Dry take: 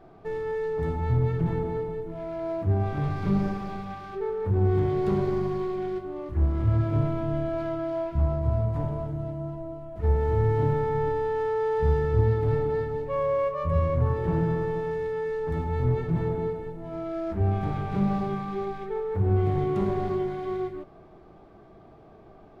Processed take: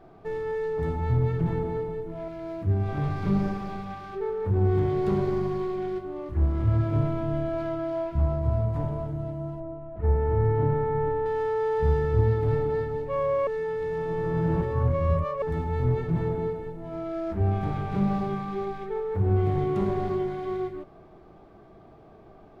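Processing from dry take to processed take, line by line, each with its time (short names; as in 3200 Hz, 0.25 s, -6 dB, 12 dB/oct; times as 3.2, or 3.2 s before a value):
2.28–2.89 bell 780 Hz -7 dB 1.5 oct
9.6–11.26 LPF 2000 Hz
13.47–15.42 reverse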